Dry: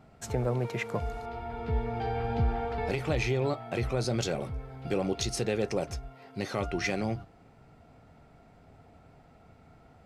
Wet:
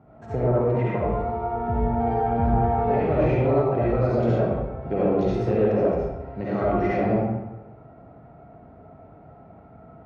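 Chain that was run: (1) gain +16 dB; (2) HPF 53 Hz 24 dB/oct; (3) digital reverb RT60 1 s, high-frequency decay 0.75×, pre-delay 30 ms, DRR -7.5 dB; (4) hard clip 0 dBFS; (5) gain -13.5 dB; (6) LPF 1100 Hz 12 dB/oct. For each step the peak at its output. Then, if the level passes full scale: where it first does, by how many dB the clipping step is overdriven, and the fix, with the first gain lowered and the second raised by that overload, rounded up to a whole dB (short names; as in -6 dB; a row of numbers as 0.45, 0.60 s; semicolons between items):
-1.5, -0.5, +7.0, 0.0, -13.5, -13.0 dBFS; step 3, 7.0 dB; step 1 +9 dB, step 5 -6.5 dB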